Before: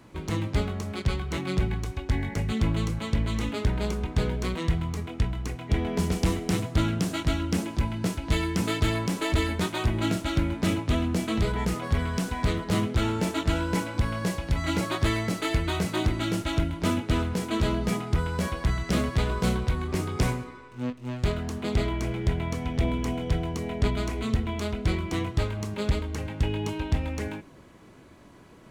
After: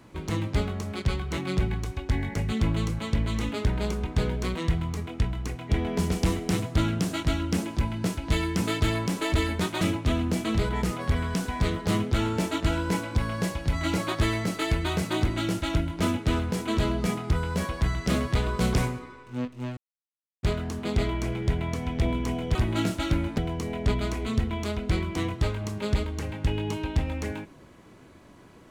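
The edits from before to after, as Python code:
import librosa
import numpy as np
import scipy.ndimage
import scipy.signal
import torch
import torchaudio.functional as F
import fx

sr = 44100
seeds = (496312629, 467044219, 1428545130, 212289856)

y = fx.edit(x, sr, fx.move(start_s=9.81, length_s=0.83, to_s=23.34),
    fx.cut(start_s=19.57, length_s=0.62),
    fx.insert_silence(at_s=21.22, length_s=0.66), tone=tone)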